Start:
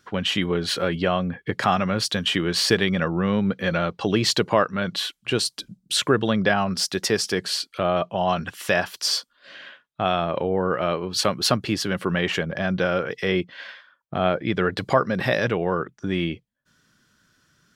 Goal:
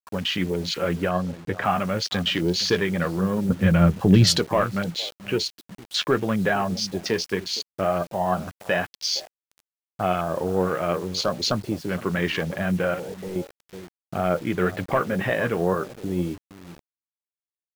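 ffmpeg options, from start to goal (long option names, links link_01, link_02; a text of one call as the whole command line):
ffmpeg -i in.wav -filter_complex "[0:a]asoftclip=type=tanh:threshold=-9.5dB,asplit=3[link_01][link_02][link_03];[link_01]afade=type=out:start_time=3.49:duration=0.02[link_04];[link_02]bass=frequency=250:gain=14,treble=frequency=4000:gain=6,afade=type=in:start_time=3.49:duration=0.02,afade=type=out:start_time=4.37:duration=0.02[link_05];[link_03]afade=type=in:start_time=4.37:duration=0.02[link_06];[link_04][link_05][link_06]amix=inputs=3:normalize=0,aecho=1:1:464:0.158,flanger=delay=9.6:depth=3.6:regen=58:speed=1.9:shape=triangular,asettb=1/sr,asplit=3[link_07][link_08][link_09];[link_07]atrim=end=12.944[link_10];[link_08]atrim=start=12.94:end=13.36,asetpts=PTS-STARTPTS,afade=type=in:duration=0.004:curve=qsin,afade=type=out:start_time=0.416:duration=0.004:curve=qsin,volume=32dB,asoftclip=hard,volume=-32dB[link_11];[link_09]atrim=start=13.356[link_12];[link_10][link_11]acrossfade=duration=0.004:curve1=hsin:curve2=qsin[link_13];[link_13][link_12]acrossfade=duration=0.004:curve1=qsin:curve2=hsin,afwtdn=0.02,acrusher=bits=7:mix=0:aa=0.000001,asettb=1/sr,asplit=3[link_14][link_15][link_16];[link_14]atrim=end=1.094[link_17];[link_15]atrim=start=1.09:end=1.65,asetpts=PTS-STARTPTS,afade=type=in:duration=0.004:curve=qsin,afade=type=out:start_time=0.556:duration=0.004:curve=qsin,highshelf=frequency=8400:gain=-8[link_18];[link_16]atrim=start=1.646[link_19];[link_17][link_18]acrossfade=duration=0.004:curve1=hsin:curve2=qsin[link_20];[link_20][link_19]acrossfade=duration=0.004:curve1=qsin:curve2=hsin,volume=3.5dB" out.wav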